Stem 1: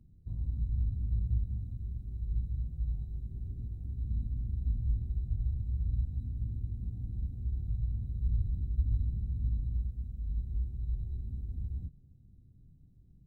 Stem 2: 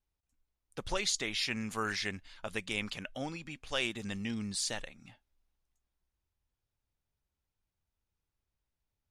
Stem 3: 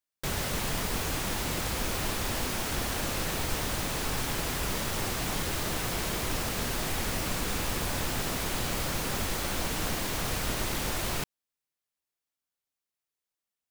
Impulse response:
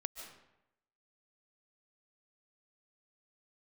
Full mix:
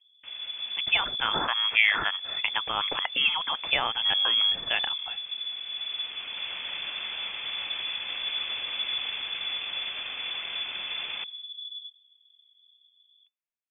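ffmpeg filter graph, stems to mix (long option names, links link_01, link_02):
-filter_complex "[0:a]volume=-4dB[link_01];[1:a]lowpass=7300,equalizer=frequency=410:width_type=o:width=0.24:gain=-14,volume=2.5dB,asplit=2[link_02][link_03];[2:a]alimiter=level_in=4dB:limit=-24dB:level=0:latency=1,volume=-4dB,volume=-13.5dB,asplit=2[link_04][link_05];[link_05]volume=-6.5dB[link_06];[link_03]apad=whole_len=604178[link_07];[link_04][link_07]sidechaincompress=threshold=-52dB:ratio=12:attack=21:release=1200[link_08];[link_02][link_08]amix=inputs=2:normalize=0,dynaudnorm=framelen=170:gausssize=13:maxgain=13.5dB,alimiter=limit=-13.5dB:level=0:latency=1:release=253,volume=0dB[link_09];[3:a]atrim=start_sample=2205[link_10];[link_06][link_10]afir=irnorm=-1:irlink=0[link_11];[link_01][link_09][link_11]amix=inputs=3:normalize=0,superequalizer=8b=0.562:9b=2.24:10b=1.58,lowpass=frequency=3000:width_type=q:width=0.5098,lowpass=frequency=3000:width_type=q:width=0.6013,lowpass=frequency=3000:width_type=q:width=0.9,lowpass=frequency=3000:width_type=q:width=2.563,afreqshift=-3500"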